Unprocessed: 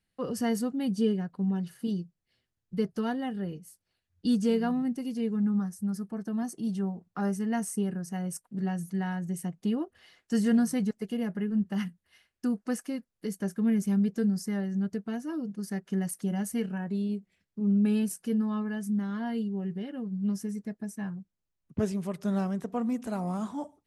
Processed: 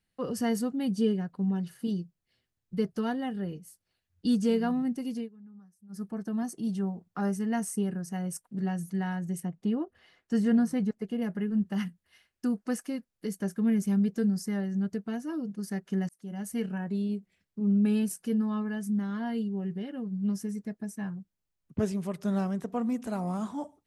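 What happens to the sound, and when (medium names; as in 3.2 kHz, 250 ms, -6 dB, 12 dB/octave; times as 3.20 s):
5.16–6.02 s: dip -23.5 dB, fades 0.13 s
9.40–11.22 s: treble shelf 3.3 kHz -10 dB
16.09–16.66 s: fade in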